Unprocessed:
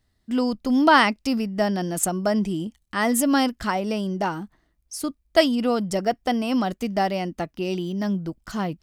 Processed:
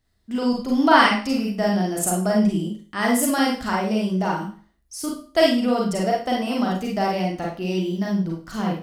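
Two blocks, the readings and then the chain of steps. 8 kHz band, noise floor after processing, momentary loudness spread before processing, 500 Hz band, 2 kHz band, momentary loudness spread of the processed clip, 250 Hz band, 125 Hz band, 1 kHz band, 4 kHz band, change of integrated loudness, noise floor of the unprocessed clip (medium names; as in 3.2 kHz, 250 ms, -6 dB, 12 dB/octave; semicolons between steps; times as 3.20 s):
+1.5 dB, -64 dBFS, 11 LU, +1.5 dB, +1.5 dB, 10 LU, +1.5 dB, +3.5 dB, +1.5 dB, +1.5 dB, +1.5 dB, -70 dBFS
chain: Schroeder reverb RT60 0.39 s, combs from 33 ms, DRR -2.5 dB; trim -3 dB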